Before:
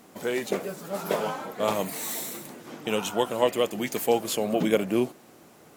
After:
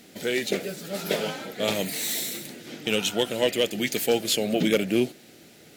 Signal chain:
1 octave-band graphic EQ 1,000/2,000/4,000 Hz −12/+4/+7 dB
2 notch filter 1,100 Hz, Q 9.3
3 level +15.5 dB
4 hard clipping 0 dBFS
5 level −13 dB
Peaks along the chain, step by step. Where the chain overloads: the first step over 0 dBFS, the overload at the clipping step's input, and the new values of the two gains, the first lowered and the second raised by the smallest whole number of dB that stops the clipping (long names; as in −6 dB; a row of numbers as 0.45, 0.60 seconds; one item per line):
−8.5, −8.5, +7.0, 0.0, −13.0 dBFS
step 3, 7.0 dB
step 3 +8.5 dB, step 5 −6 dB